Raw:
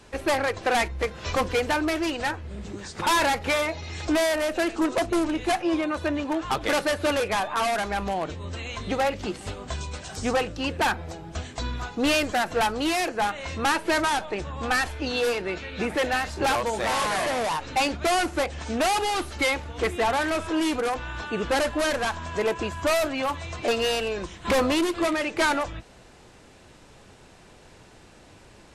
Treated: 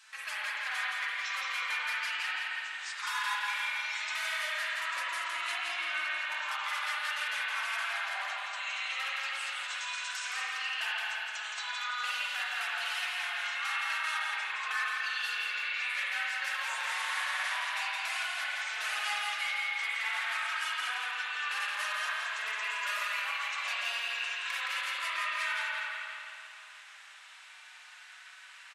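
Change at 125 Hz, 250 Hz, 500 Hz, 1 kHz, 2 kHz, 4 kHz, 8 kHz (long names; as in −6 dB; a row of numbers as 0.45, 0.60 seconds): below −40 dB, below −40 dB, −28.0 dB, −10.5 dB, −2.0 dB, −3.5 dB, −8.5 dB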